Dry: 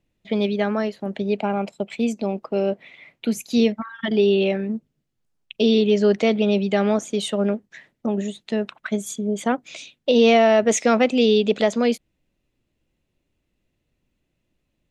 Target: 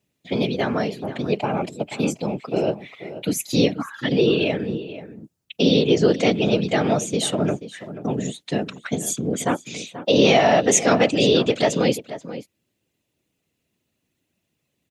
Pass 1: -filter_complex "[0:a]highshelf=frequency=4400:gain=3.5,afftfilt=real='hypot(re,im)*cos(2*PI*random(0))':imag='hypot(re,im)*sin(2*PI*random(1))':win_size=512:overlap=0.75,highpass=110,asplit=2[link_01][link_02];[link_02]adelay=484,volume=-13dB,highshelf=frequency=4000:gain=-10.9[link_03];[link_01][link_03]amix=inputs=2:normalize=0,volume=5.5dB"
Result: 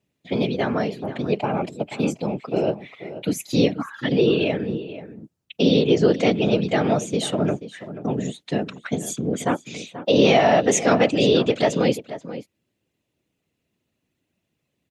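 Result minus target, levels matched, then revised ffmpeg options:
8,000 Hz band −4.5 dB
-filter_complex "[0:a]highshelf=frequency=4400:gain=10.5,afftfilt=real='hypot(re,im)*cos(2*PI*random(0))':imag='hypot(re,im)*sin(2*PI*random(1))':win_size=512:overlap=0.75,highpass=110,asplit=2[link_01][link_02];[link_02]adelay=484,volume=-13dB,highshelf=frequency=4000:gain=-10.9[link_03];[link_01][link_03]amix=inputs=2:normalize=0,volume=5.5dB"

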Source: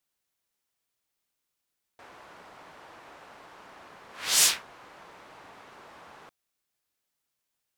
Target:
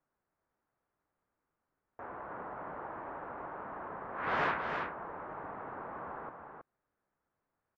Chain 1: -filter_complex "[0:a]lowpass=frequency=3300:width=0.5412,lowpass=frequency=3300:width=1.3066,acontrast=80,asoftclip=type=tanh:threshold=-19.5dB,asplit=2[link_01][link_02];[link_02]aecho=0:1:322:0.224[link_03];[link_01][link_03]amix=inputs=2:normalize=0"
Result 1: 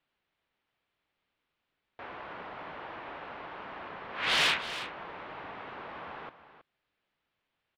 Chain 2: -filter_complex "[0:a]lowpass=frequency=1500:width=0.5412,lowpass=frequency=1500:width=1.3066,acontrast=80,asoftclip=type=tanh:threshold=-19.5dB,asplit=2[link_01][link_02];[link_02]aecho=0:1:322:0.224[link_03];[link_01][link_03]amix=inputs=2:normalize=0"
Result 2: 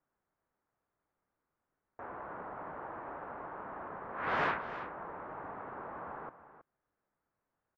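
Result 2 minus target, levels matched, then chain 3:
echo-to-direct −7.5 dB
-filter_complex "[0:a]lowpass=frequency=1500:width=0.5412,lowpass=frequency=1500:width=1.3066,acontrast=80,asoftclip=type=tanh:threshold=-19.5dB,asplit=2[link_01][link_02];[link_02]aecho=0:1:322:0.531[link_03];[link_01][link_03]amix=inputs=2:normalize=0"

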